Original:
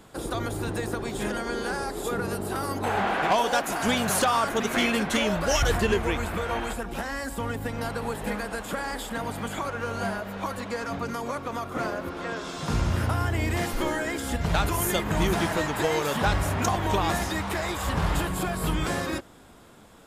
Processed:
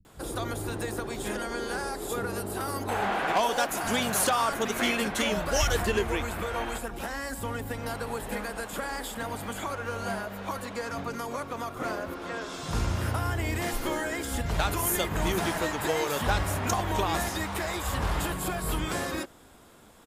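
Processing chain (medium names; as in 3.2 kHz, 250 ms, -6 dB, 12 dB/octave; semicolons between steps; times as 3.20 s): treble shelf 8.7 kHz +6 dB; bands offset in time lows, highs 50 ms, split 160 Hz; trim -2.5 dB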